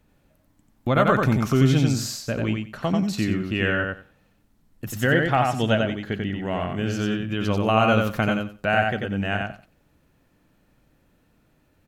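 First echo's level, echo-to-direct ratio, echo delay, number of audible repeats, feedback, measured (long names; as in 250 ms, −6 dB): −3.5 dB, −3.5 dB, 91 ms, 3, 17%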